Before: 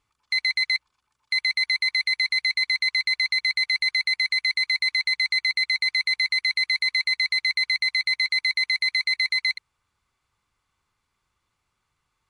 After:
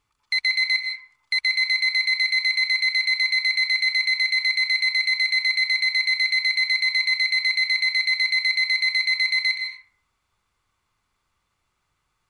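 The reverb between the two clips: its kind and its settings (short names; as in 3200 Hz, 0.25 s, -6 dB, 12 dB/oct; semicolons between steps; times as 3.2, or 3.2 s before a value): digital reverb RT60 0.68 s, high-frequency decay 0.4×, pre-delay 0.11 s, DRR 3.5 dB; gain +1 dB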